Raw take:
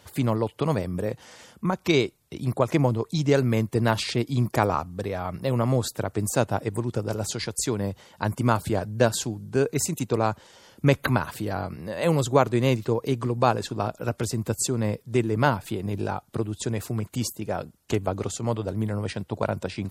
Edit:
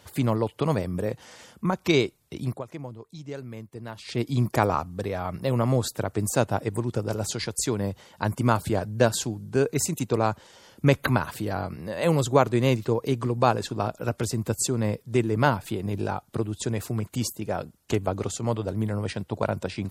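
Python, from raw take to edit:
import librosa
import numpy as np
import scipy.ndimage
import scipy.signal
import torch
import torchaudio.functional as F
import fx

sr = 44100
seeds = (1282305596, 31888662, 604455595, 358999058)

y = fx.edit(x, sr, fx.fade_down_up(start_s=2.42, length_s=1.82, db=-16.0, fade_s=0.21), tone=tone)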